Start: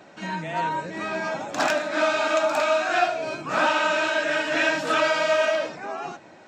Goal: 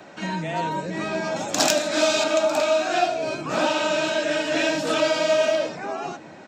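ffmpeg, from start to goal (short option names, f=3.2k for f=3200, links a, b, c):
-filter_complex "[0:a]asettb=1/sr,asplit=3[a][b][c];[a]atrim=end=1.364[d];[b]atrim=start=1.36:end=2.24,asetpts=PTS-STARTPTS,afade=t=in:d=0.004:c=qsin,afade=t=out:st=0.876:d=0.004:c=qsin,highshelf=f=3.6k:g=11[e];[c]atrim=start=2.236[f];[d][e]acrossfade=d=0.004:c1=hsin:c2=qsin[g];[g][f]acrossfade=d=0.004:c1=qsin:c2=hsin,acrossover=split=320|750|2800[h][i][j][k];[h]aecho=1:1:543:0.422[l];[j]acompressor=threshold=-40dB:ratio=4[m];[l][i][m][k]amix=inputs=4:normalize=0,volume=4.5dB"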